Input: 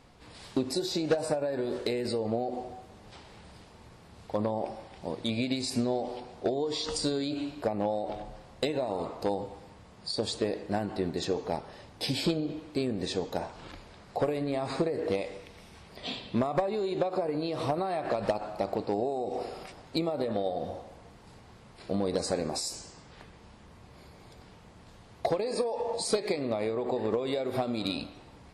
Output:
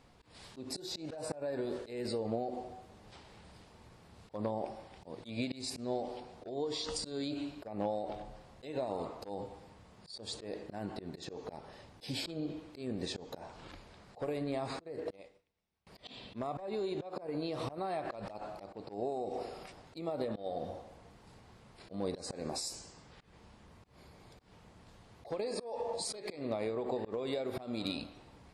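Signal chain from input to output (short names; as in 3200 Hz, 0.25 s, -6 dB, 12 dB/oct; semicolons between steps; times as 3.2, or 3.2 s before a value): auto swell 0.158 s; 14.8–15.87 upward expander 2.5:1, over -51 dBFS; gain -5 dB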